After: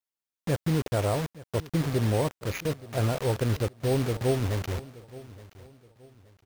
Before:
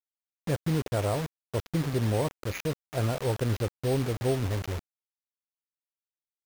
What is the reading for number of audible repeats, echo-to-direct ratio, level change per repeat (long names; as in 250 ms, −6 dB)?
2, −18.5 dB, −9.5 dB